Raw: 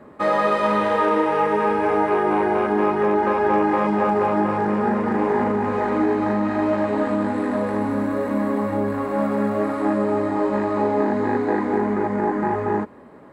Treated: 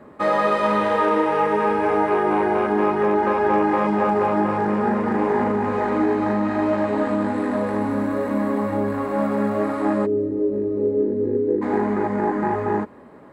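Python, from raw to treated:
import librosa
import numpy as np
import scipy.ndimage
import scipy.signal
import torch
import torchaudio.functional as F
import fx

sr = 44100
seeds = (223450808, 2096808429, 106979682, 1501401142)

y = fx.curve_eq(x, sr, hz=(130.0, 190.0, 480.0, 720.0, 4100.0), db=(0, -6, 5, -28, -23), at=(10.05, 11.61), fade=0.02)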